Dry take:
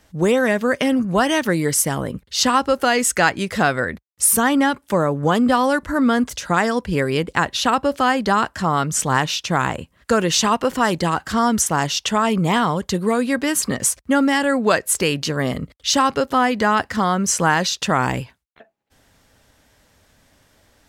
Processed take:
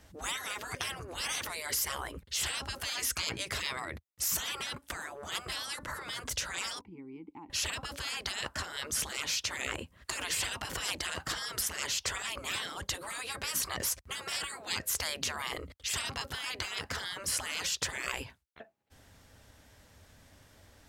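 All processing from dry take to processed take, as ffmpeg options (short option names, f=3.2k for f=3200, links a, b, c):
-filter_complex "[0:a]asettb=1/sr,asplit=3[a][b][c];[a]atrim=end=6.814[d];[b]atrim=start=6.81:end=7.5,asetpts=PTS-STARTPTS,afade=t=in:d=0.004:c=qsin,afade=t=out:st=0.686:d=0.004:c=qsin,equalizer=f=3.8k:t=o:w=2.8:g=-9,acompressor=threshold=-31dB:ratio=3:attack=3.2:release=140:knee=1:detection=peak,asplit=3[e][f][g];[e]bandpass=f=300:t=q:w=8,volume=0dB[h];[f]bandpass=f=870:t=q:w=8,volume=-6dB[i];[g]bandpass=f=2.24k:t=q:w=8,volume=-9dB[j];[h][i][j]amix=inputs=3:normalize=0[k];[c]atrim=start=7.496[l];[d][k]acrossfade=d=0.004:c1=hsin:c2=qsin[m];[m][l]acrossfade=d=0.004:c1=qsin:c2=hsin,afftfilt=real='re*lt(hypot(re,im),0.126)':imag='im*lt(hypot(re,im),0.126)':win_size=1024:overlap=0.75,equalizer=f=83:t=o:w=0.95:g=6.5,volume=-3dB"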